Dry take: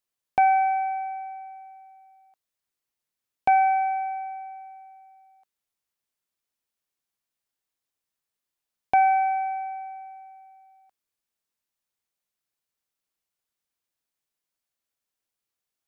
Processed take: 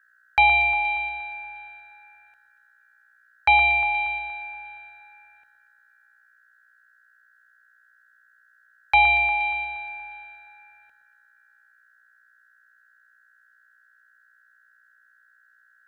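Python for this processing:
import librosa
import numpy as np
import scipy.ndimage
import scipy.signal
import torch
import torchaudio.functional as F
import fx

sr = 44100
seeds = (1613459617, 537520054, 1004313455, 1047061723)

y = fx.add_hum(x, sr, base_hz=60, snr_db=33)
y = y * np.sin(2.0 * np.pi * 1600.0 * np.arange(len(y)) / sr)
y = fx.echo_alternate(y, sr, ms=118, hz=1900.0, feedback_pct=71, wet_db=-9.0)
y = F.gain(torch.from_numpy(y), 5.0).numpy()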